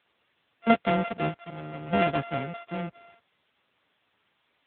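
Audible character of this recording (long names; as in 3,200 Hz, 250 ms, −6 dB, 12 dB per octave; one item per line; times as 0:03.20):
a buzz of ramps at a fixed pitch in blocks of 64 samples
chopped level 0.52 Hz, depth 65%, duty 75%
a quantiser's noise floor 10 bits, dither triangular
AMR narrowband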